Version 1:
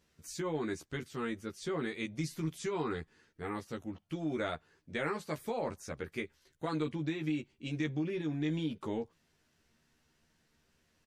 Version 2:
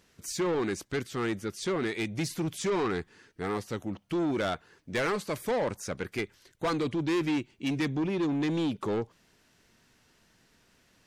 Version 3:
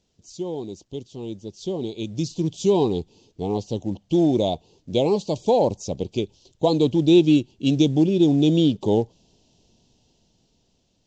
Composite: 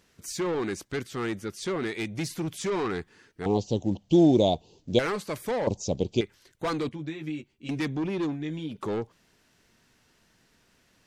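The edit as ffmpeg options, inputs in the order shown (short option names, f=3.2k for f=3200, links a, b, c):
-filter_complex "[2:a]asplit=2[a][b];[0:a]asplit=2[c][d];[1:a]asplit=5[e][f][g][h][i];[e]atrim=end=3.462[j];[a]atrim=start=3.458:end=4.992[k];[f]atrim=start=4.988:end=5.672[l];[b]atrim=start=5.668:end=6.212[m];[g]atrim=start=6.208:end=6.892[n];[c]atrim=start=6.888:end=7.692[o];[h]atrim=start=7.688:end=8.38[p];[d]atrim=start=8.28:end=8.78[q];[i]atrim=start=8.68[r];[j][k]acrossfade=d=0.004:c1=hsin:c2=hsin[s];[s][l]acrossfade=d=0.004:c1=hsin:c2=hsin[t];[t][m]acrossfade=d=0.004:c1=hsin:c2=hsin[u];[u][n]acrossfade=d=0.004:c1=hsin:c2=hsin[v];[v][o]acrossfade=d=0.004:c1=hsin:c2=hsin[w];[w][p]acrossfade=d=0.004:c1=hsin:c2=hsin[x];[x][q]acrossfade=d=0.1:c1=tri:c2=tri[y];[y][r]acrossfade=d=0.1:c1=tri:c2=tri"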